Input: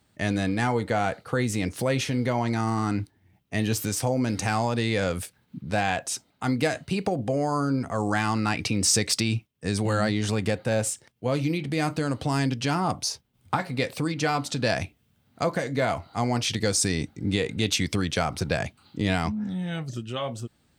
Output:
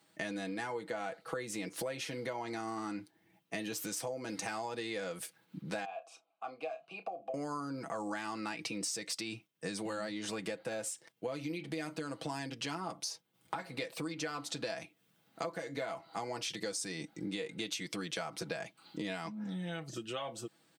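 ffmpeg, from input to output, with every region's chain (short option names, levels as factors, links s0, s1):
-filter_complex "[0:a]asettb=1/sr,asplit=3[s0][s1][s2];[s0]atrim=end=5.854[s3];[s1]atrim=start=5.85:end=7.34,asetpts=PTS-STARTPTS,afade=t=in:d=0.004:c=qsin,afade=t=out:st=1.486:d=0.004:c=qsin,asplit=3[s4][s5][s6];[s4]bandpass=f=730:t=q:w=8,volume=1[s7];[s5]bandpass=f=1090:t=q:w=8,volume=0.501[s8];[s6]bandpass=f=2440:t=q:w=8,volume=0.355[s9];[s7][s8][s9]amix=inputs=3:normalize=0,asplit=2[s10][s11];[s11]adelay=31,volume=0.251[s12];[s10][s12]amix=inputs=2:normalize=0,atrim=end_sample=65709[s13];[s2]atrim=start=7.336[s14];[s3][s13]acrossfade=d=0.004:c1=hsin:c2=qsin[s15];[s15][s14]acrossfade=d=0.004:c1=qsin:c2=hsin,highpass=260,aecho=1:1:6.1:0.63,acompressor=threshold=0.0178:ratio=6,volume=0.841"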